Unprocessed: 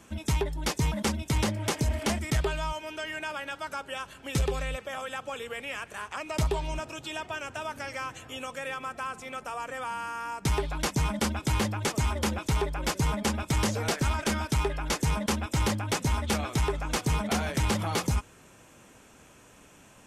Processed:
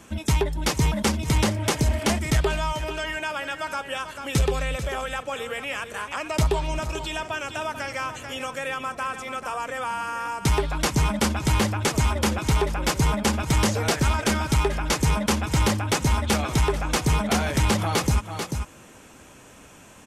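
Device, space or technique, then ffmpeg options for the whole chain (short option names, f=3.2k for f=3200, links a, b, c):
ducked delay: -filter_complex "[0:a]asplit=3[a][b][c];[b]adelay=440,volume=-7dB[d];[c]apad=whole_len=904288[e];[d][e]sidechaincompress=threshold=-38dB:ratio=8:attack=16:release=146[f];[a][f]amix=inputs=2:normalize=0,volume=5.5dB"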